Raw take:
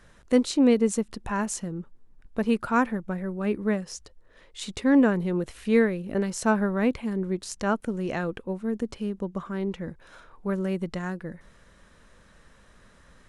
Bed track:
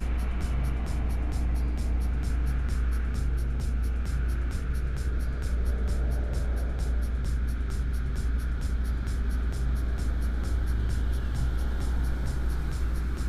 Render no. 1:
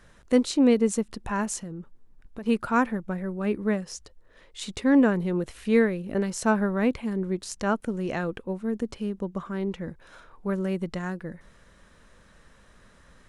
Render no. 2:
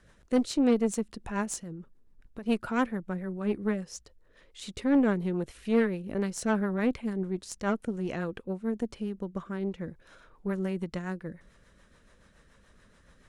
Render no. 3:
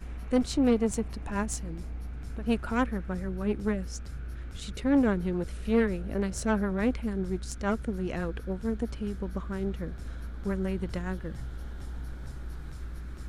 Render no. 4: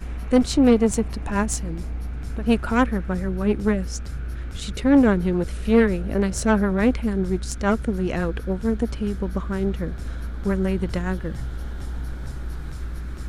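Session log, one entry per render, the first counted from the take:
1.6–2.46 compressor, threshold -33 dBFS
rotary speaker horn 7 Hz; tube stage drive 16 dB, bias 0.5
add bed track -10.5 dB
gain +8 dB

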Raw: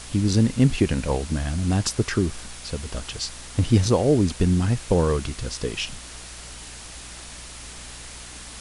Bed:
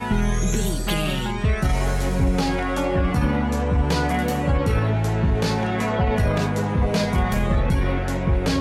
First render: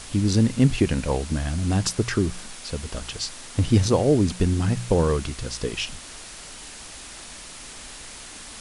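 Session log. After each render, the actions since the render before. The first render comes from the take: de-hum 60 Hz, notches 3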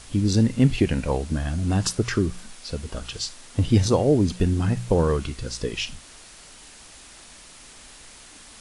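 noise print and reduce 6 dB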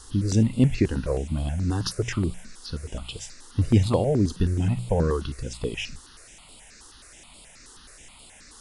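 step phaser 9.4 Hz 630–6000 Hz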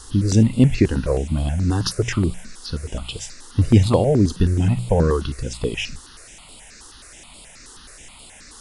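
gain +5.5 dB; limiter -2 dBFS, peak gain reduction 1 dB

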